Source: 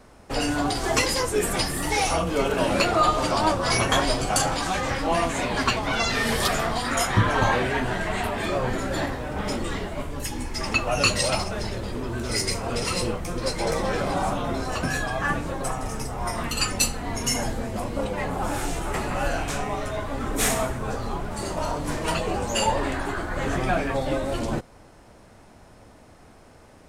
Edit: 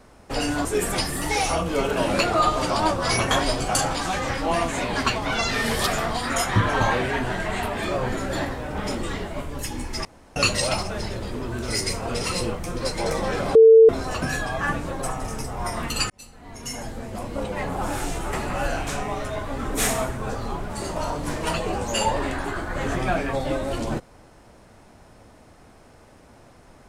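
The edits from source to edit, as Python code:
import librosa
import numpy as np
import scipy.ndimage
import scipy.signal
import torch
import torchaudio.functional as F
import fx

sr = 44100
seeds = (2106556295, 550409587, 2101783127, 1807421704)

y = fx.edit(x, sr, fx.cut(start_s=0.65, length_s=0.61),
    fx.room_tone_fill(start_s=10.66, length_s=0.31),
    fx.bleep(start_s=14.16, length_s=0.34, hz=448.0, db=-7.0),
    fx.fade_in_span(start_s=16.71, length_s=1.54), tone=tone)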